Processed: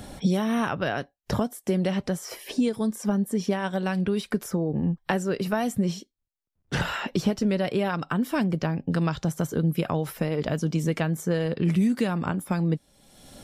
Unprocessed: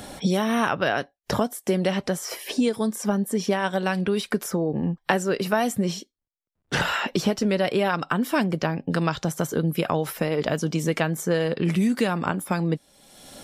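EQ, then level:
low-shelf EQ 200 Hz +11 dB
−5.5 dB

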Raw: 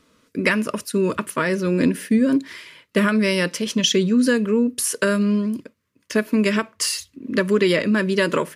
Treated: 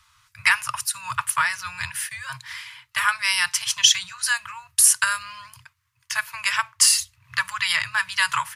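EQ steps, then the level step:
Chebyshev band-stop filter 130–780 Hz, order 5
dynamic equaliser 9,100 Hz, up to +6 dB, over −40 dBFS, Q 0.82
+3.5 dB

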